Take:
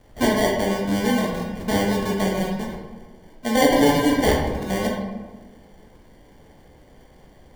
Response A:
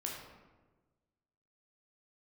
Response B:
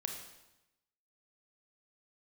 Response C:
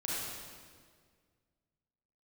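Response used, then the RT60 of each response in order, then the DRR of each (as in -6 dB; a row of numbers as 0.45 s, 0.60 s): A; 1.3 s, 0.95 s, 1.8 s; -2.0 dB, 2.5 dB, -7.0 dB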